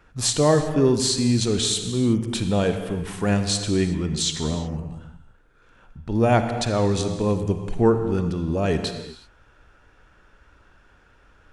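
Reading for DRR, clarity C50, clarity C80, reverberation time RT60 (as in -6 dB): 7.5 dB, 8.0 dB, 9.0 dB, not exponential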